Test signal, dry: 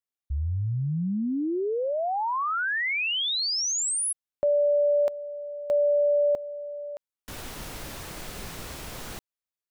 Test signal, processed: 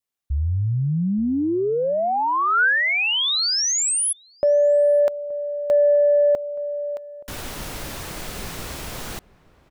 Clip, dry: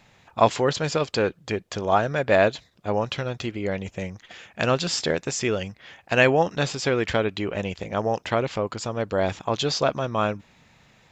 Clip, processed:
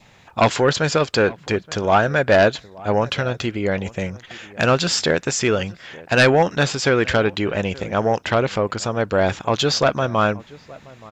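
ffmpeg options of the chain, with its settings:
-filter_complex "[0:a]aeval=exprs='0.794*sin(PI/2*2.51*val(0)/0.794)':c=same,asplit=2[s0][s1];[s1]adelay=874.6,volume=0.0891,highshelf=f=4000:g=-19.7[s2];[s0][s2]amix=inputs=2:normalize=0,adynamicequalizer=threshold=0.0251:dfrequency=1500:dqfactor=3.5:tfrequency=1500:tqfactor=3.5:attack=5:release=100:ratio=0.375:range=2.5:mode=boostabove:tftype=bell,volume=0.501"

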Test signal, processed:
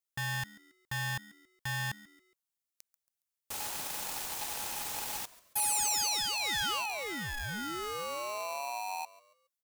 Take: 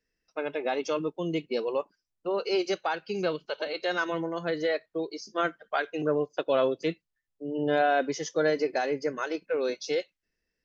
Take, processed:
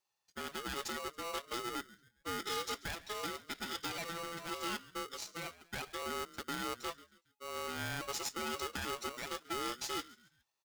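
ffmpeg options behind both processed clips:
-filter_complex "[0:a]alimiter=limit=0.0891:level=0:latency=1:release=16,asplit=2[s0][s1];[s1]asplit=3[s2][s3][s4];[s2]adelay=138,afreqshift=80,volume=0.1[s5];[s3]adelay=276,afreqshift=160,volume=0.0389[s6];[s4]adelay=414,afreqshift=240,volume=0.0151[s7];[s5][s6][s7]amix=inputs=3:normalize=0[s8];[s0][s8]amix=inputs=2:normalize=0,aexciter=amount=1.6:drive=7.9:freq=2000,aeval=exprs='(tanh(12.6*val(0)+0.6)-tanh(0.6))/12.6':c=same,aeval=exprs='val(0)*sgn(sin(2*PI*840*n/s))':c=same,volume=0.447"

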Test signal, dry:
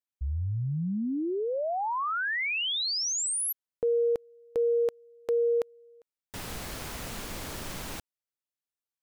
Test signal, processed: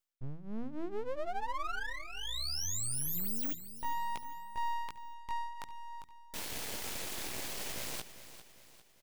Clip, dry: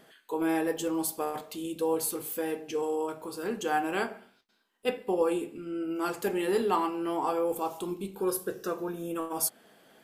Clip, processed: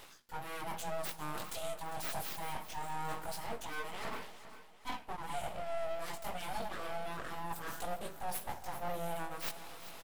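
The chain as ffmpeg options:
-filter_complex "[0:a]areverse,acompressor=threshold=0.01:ratio=16:attack=1.2:release=307:knee=1:detection=rms,areverse,flanger=delay=16.5:depth=5:speed=0.24,equalizer=f=1200:t=o:w=0.5:g=-14.5,aeval=exprs='abs(val(0))':c=same,lowshelf=f=260:g=-7.5,bandreject=f=80.3:t=h:w=4,bandreject=f=160.6:t=h:w=4,bandreject=f=240.9:t=h:w=4,bandreject=f=321.2:t=h:w=4,asplit=2[s0][s1];[s1]aecho=0:1:400|800|1200|1600:0.211|0.0972|0.0447|0.0206[s2];[s0][s2]amix=inputs=2:normalize=0,volume=5.62"

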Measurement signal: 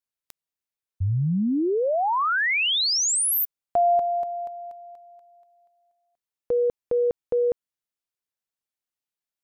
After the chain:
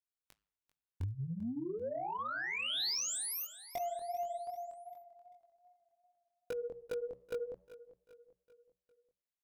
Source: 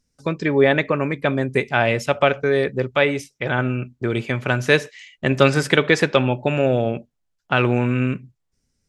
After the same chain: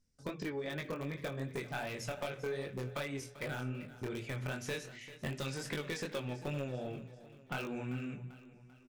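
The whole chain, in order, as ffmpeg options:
-filter_complex "[0:a]lowshelf=f=140:g=6.5,bandreject=f=60:t=h:w=6,bandreject=f=120:t=h:w=6,bandreject=f=180:t=h:w=6,acrossover=split=4300[s0][s1];[s0]acompressor=threshold=0.0398:ratio=16:attack=42:release=240:knee=1:detection=peak[s2];[s1]alimiter=level_in=1.26:limit=0.0631:level=0:latency=1:release=176,volume=0.794[s3];[s2][s3]amix=inputs=2:normalize=0,flanger=delay=8.7:depth=5.3:regen=-89:speed=0.36:shape=sinusoidal,asplit=2[s4][s5];[s5]aeval=exprs='(mod(14.1*val(0)+1,2)-1)/14.1':c=same,volume=0.447[s6];[s4][s6]amix=inputs=2:normalize=0,flanger=delay=20:depth=4.1:speed=2.6,asoftclip=type=tanh:threshold=0.0708,aecho=1:1:392|784|1176|1568:0.158|0.0777|0.0381|0.0186,volume=0.562"

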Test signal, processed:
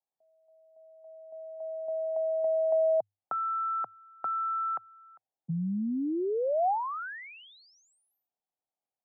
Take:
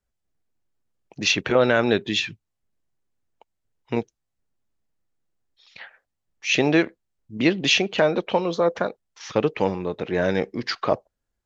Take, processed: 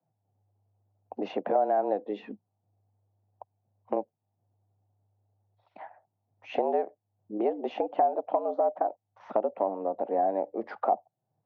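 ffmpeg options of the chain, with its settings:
-af "afreqshift=100,lowpass=f=760:t=q:w=4.9,acompressor=threshold=0.0316:ratio=2.5"

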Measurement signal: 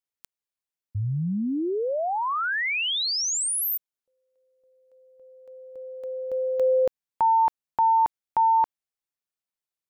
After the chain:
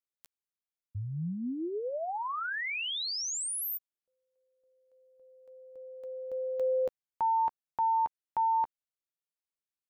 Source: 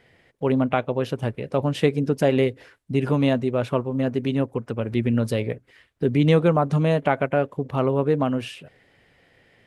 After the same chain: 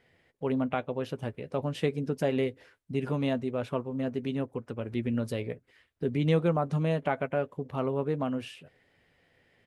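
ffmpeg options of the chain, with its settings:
-filter_complex "[0:a]asplit=2[s0][s1];[s1]adelay=12,volume=0.224[s2];[s0][s2]amix=inputs=2:normalize=0,volume=0.376"

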